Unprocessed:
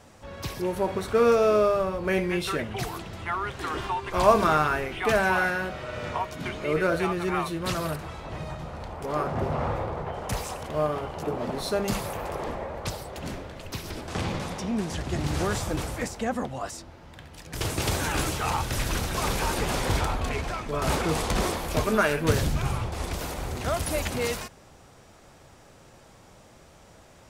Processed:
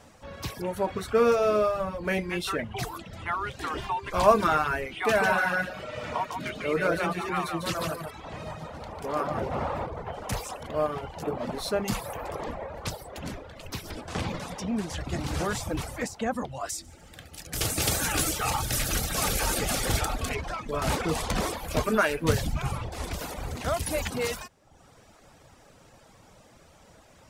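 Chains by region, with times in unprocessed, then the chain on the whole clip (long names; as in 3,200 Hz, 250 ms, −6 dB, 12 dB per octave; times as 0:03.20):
0:04.94–0:09.87: low-shelf EQ 79 Hz −9 dB + single-tap delay 148 ms −4 dB
0:16.69–0:20.35: Butterworth band-reject 990 Hz, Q 6.6 + high-shelf EQ 5,500 Hz +10.5 dB + echo machine with several playback heads 74 ms, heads first and second, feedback 60%, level −16 dB
whole clip: mains-hum notches 50/100/150 Hz; reverb reduction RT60 0.78 s; notch filter 370 Hz, Q 12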